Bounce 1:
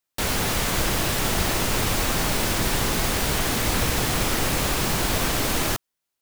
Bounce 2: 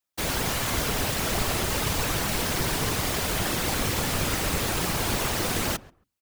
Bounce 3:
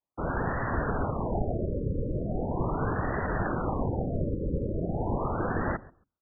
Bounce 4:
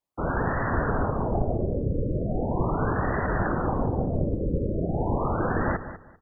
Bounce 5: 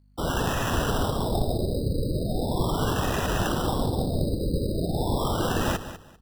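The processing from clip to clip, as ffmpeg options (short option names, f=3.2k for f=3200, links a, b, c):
-filter_complex "[0:a]bandreject=f=50:t=h:w=6,bandreject=f=100:t=h:w=6,bandreject=f=150:t=h:w=6,bandreject=f=200:t=h:w=6,bandreject=f=250:t=h:w=6,asplit=2[a][b];[b]adelay=136,lowpass=f=1.5k:p=1,volume=-19.5dB,asplit=2[c][d];[d]adelay=136,lowpass=f=1.5k:p=1,volume=0.17[e];[a][c][e]amix=inputs=3:normalize=0,afftfilt=real='hypot(re,im)*cos(2*PI*random(0))':imag='hypot(re,im)*sin(2*PI*random(1))':win_size=512:overlap=0.75,volume=3dB"
-af "afftfilt=real='re*lt(b*sr/1024,570*pow(2000/570,0.5+0.5*sin(2*PI*0.39*pts/sr)))':imag='im*lt(b*sr/1024,570*pow(2000/570,0.5+0.5*sin(2*PI*0.39*pts/sr)))':win_size=1024:overlap=0.75"
-af "aecho=1:1:197|394|591:0.224|0.0493|0.0108,volume=3.5dB"
-af "aeval=exprs='val(0)+0.00141*(sin(2*PI*50*n/s)+sin(2*PI*2*50*n/s)/2+sin(2*PI*3*50*n/s)/3+sin(2*PI*4*50*n/s)/4+sin(2*PI*5*50*n/s)/5)':c=same,acrusher=samples=10:mix=1:aa=0.000001"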